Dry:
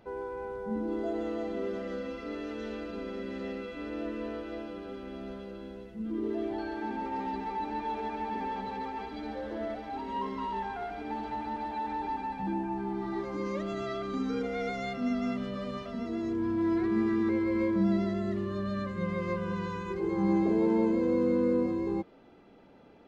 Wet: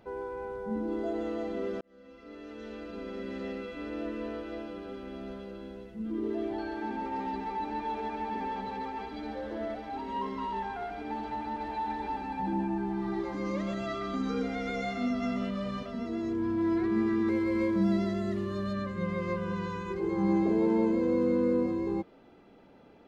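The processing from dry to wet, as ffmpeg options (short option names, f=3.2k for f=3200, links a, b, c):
-filter_complex "[0:a]asettb=1/sr,asplit=3[a][b][c];[a]atrim=end=11.474[d];[b]atrim=start=11.47:end=15.83,asetpts=PTS-STARTPTS,afade=t=in:d=0.004:c=qsin,afade=t=out:st=4.356:d=0.004:c=qsin,aecho=1:1:132:0.596,atrim=end_sample=192276[e];[c]atrim=start=15.826[f];[d][e]acrossfade=d=0.004:c1=hsin:c2=qsin[g];[g][f]acrossfade=d=0.004:c1=qsin:c2=hsin,asettb=1/sr,asplit=3[h][i][j];[h]atrim=end=17.284[k];[i]atrim=start=17.28:end=18.73,asetpts=PTS-STARTPTS,afade=t=in:d=0.004:c=qsin,afade=t=out:st=1.446:d=0.004:c=qsin,highshelf=f=4.6k:g=7.5[l];[j]atrim=start=18.726[m];[k][l]acrossfade=d=0.004:c1=hsin:c2=qsin[n];[n][m]acrossfade=d=0.004:c1=qsin:c2=hsin,asplit=2[o][p];[o]atrim=end=1.81,asetpts=PTS-STARTPTS,afade=t=out:st=1.806:d=0.004:c=hsin[q];[p]atrim=start=1.81,asetpts=PTS-STARTPTS,afade=t=in:d=1.5[r];[q][r]concat=n=2:v=0:a=1"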